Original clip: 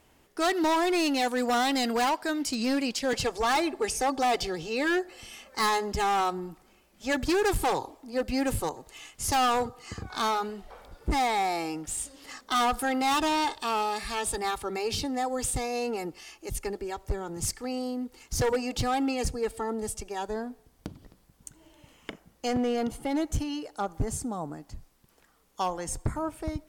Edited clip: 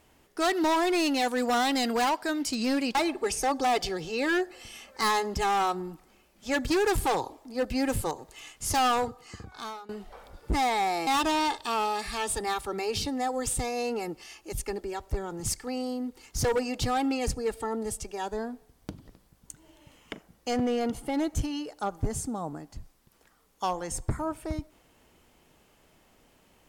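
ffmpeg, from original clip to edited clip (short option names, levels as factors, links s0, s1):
-filter_complex "[0:a]asplit=4[s0][s1][s2][s3];[s0]atrim=end=2.952[s4];[s1]atrim=start=3.528:end=10.47,asetpts=PTS-STARTPTS,afade=t=out:st=5.962:d=0.98:silence=0.0891251[s5];[s2]atrim=start=10.47:end=11.652,asetpts=PTS-STARTPTS,afade=t=in:d=0.004:c=hsin:silence=0.0891251[s6];[s3]atrim=start=13.038[s7];[s5][s6]concat=n=2:v=0:a=1[s8];[s4][s8]acrossfade=d=0.004:c1=hsin:c2=hsin[s9];[s9][s7]acrossfade=d=0.004:c1=hsin:c2=hsin"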